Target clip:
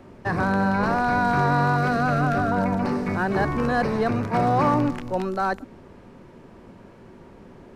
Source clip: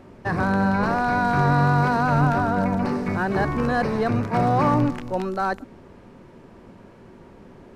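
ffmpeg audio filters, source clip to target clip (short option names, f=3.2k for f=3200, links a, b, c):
-filter_complex "[0:a]acrossover=split=230|3500[a][b][c];[a]alimiter=limit=-22.5dB:level=0:latency=1[d];[d][b][c]amix=inputs=3:normalize=0,asettb=1/sr,asplit=3[e][f][g];[e]atrim=end=1.764[h];[f]atrim=start=1.76:end=2.52,asetpts=PTS-STARTPTS,afade=t=in:d=0.004:c=qsin,afade=t=out:st=0.756:d=0.004:c=qsin,asuperstop=centerf=920:order=4:qfactor=4.2[i];[g]atrim=start=2.516[j];[h][i]acrossfade=d=0.004:c1=hsin:c2=qsin[k];[k][j]acrossfade=d=0.004:c1=qsin:c2=hsin"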